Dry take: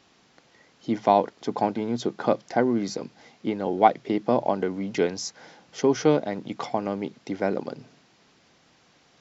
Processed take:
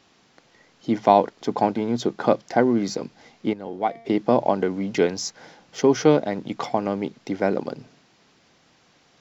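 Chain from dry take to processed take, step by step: 3.53–4.06 resonator 230 Hz, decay 0.95 s, mix 70%; in parallel at -9.5 dB: backlash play -40 dBFS; on the sum: gain +1 dB

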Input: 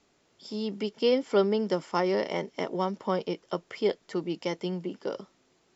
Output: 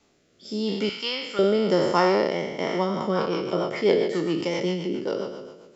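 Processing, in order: spectral trails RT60 1.31 s; 0.89–1.39 resonant low shelf 790 Hz -13.5 dB, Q 1.5; rotary speaker horn 0.9 Hz, later 7.5 Hz, at 2.46; gain +5 dB

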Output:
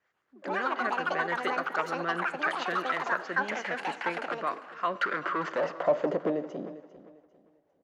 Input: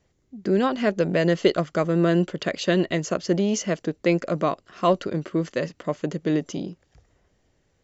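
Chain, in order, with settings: harmonic tremolo 5.9 Hz, depth 50%, crossover 420 Hz; 4.95–6.3 overdrive pedal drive 27 dB, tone 4200 Hz, clips at -15 dBFS; on a send at -16 dB: reverb RT60 1.2 s, pre-delay 35 ms; on the sum: dynamic EQ 200 Hz, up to +5 dB, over -34 dBFS, Q 0.76; in parallel at +1.5 dB: compressor, threshold -31 dBFS, peak gain reduction 16.5 dB; on the sum: echoes that change speed 0.138 s, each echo +7 st, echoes 2; band-pass sweep 1500 Hz -> 650 Hz, 5.11–5.95; feedback echo 0.399 s, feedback 30%, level -16 dB

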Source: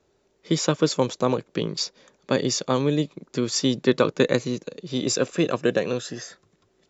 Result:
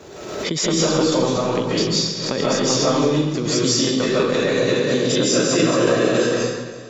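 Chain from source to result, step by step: 4.18–6.25 regenerating reverse delay 0.209 s, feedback 43%, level -2.5 dB; HPF 84 Hz; compressor 4:1, threshold -26 dBFS, peak gain reduction 11.5 dB; echo with dull and thin repeats by turns 0.16 s, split 1400 Hz, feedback 70%, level -14 dB; reverb RT60 1.1 s, pre-delay 0.115 s, DRR -8.5 dB; backwards sustainer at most 43 dB/s; gain +3 dB

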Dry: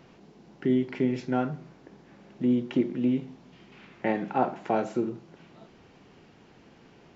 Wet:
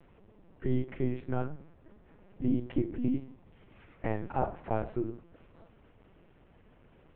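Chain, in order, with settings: air absorption 290 m; LPC vocoder at 8 kHz pitch kept; gain -4 dB

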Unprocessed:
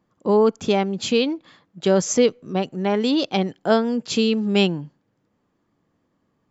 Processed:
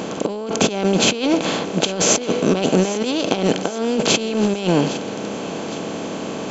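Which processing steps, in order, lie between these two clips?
per-bin compression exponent 0.4; negative-ratio compressor -19 dBFS, ratio -0.5; on a send: thinning echo 0.81 s, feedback 49%, level -14.5 dB; on the sum: gain +1.5 dB

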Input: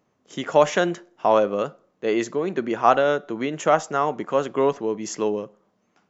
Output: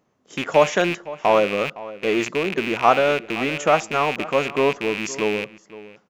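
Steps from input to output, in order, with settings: rattling part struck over -39 dBFS, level -16 dBFS; outdoor echo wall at 88 m, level -17 dB; gain +1 dB

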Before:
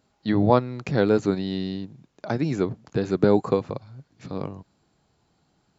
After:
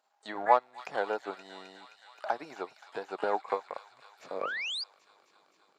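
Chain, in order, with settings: dynamic EQ 3900 Hz, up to -6 dB, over -46 dBFS, Q 0.74; transient shaper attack +3 dB, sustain -11 dB; high-pass sweep 800 Hz -> 380 Hz, 3.87–5.04; on a send: thin delay 0.262 s, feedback 78%, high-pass 2500 Hz, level -6.5 dB; on the sum: painted sound rise, 4.42–4.84, 1100–5000 Hz -28 dBFS; harmoniser +12 st -16 dB; gain -7 dB

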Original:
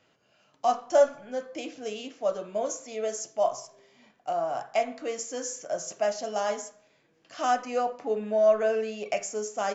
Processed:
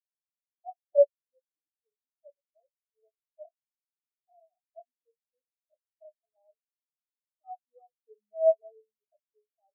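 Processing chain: spectral expander 4:1

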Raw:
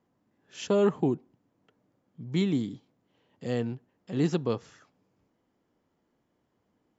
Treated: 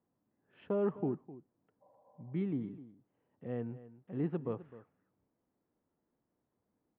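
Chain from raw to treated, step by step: Bessel low-pass 1500 Hz, order 8; outdoor echo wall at 44 m, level -16 dB; spectral repair 1.84–2.43, 470–1100 Hz after; gain -8.5 dB

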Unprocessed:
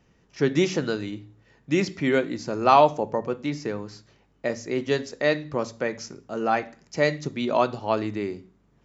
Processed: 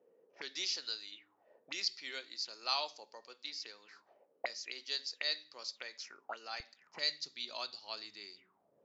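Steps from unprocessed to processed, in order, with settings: auto-wah 460–4600 Hz, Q 7.1, up, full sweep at -26.5 dBFS; HPF 270 Hz 12 dB/oct, from 6.6 s 83 Hz; gain +8 dB

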